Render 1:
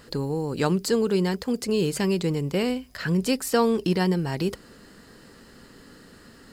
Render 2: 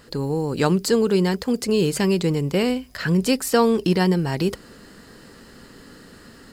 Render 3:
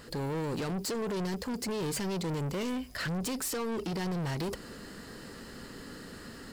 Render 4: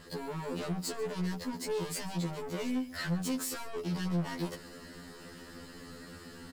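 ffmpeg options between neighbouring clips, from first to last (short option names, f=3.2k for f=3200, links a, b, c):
-af "dynaudnorm=f=130:g=3:m=4dB"
-af "alimiter=limit=-16dB:level=0:latency=1:release=56,asoftclip=type=tanh:threshold=-31dB"
-af "aecho=1:1:138:0.112,afftfilt=real='re*2*eq(mod(b,4),0)':imag='im*2*eq(mod(b,4),0)':win_size=2048:overlap=0.75"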